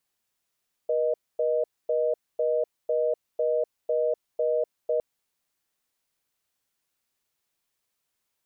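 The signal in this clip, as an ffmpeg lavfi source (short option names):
-f lavfi -i "aevalsrc='0.0596*(sin(2*PI*480*t)+sin(2*PI*620*t))*clip(min(mod(t,0.5),0.25-mod(t,0.5))/0.005,0,1)':d=4.11:s=44100"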